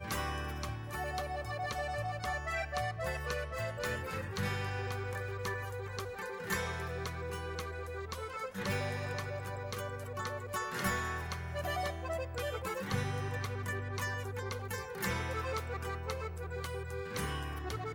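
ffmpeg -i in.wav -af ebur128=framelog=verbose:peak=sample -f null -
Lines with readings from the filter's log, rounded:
Integrated loudness:
  I:         -37.8 LUFS
  Threshold: -47.8 LUFS
Loudness range:
  LRA:         2.2 LU
  Threshold: -57.7 LUFS
  LRA low:   -39.0 LUFS
  LRA high:  -36.8 LUFS
Sample peak:
  Peak:      -20.0 dBFS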